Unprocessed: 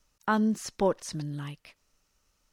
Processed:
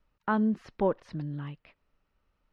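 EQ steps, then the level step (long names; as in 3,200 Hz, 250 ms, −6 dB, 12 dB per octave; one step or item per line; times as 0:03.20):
high-frequency loss of the air 400 metres
0.0 dB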